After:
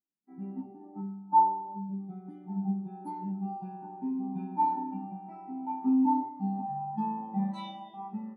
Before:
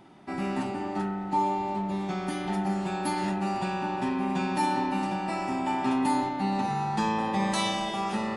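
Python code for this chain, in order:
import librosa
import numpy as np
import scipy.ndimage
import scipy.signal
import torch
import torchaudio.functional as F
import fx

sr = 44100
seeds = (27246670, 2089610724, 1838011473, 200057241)

y = fx.spectral_expand(x, sr, expansion=2.5)
y = y * librosa.db_to_amplitude(1.5)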